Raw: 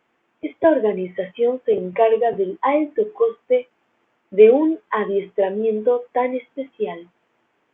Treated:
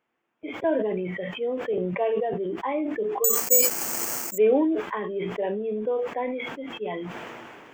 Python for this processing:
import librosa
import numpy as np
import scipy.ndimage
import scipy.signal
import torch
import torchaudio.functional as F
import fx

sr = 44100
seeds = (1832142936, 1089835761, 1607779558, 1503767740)

y = fx.resample_bad(x, sr, factor=6, down='filtered', up='zero_stuff', at=(3.24, 4.38))
y = fx.sustainer(y, sr, db_per_s=23.0)
y = y * librosa.db_to_amplitude(-10.5)